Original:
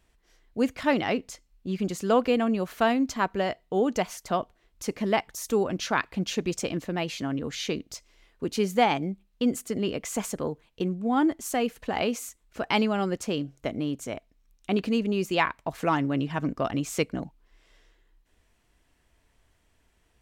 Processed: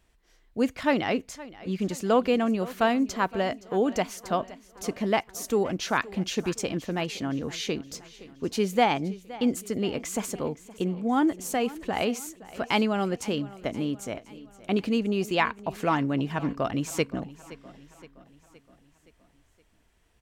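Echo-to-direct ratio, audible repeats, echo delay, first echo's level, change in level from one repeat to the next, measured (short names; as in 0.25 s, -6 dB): -17.0 dB, 4, 0.519 s, -18.5 dB, -5.5 dB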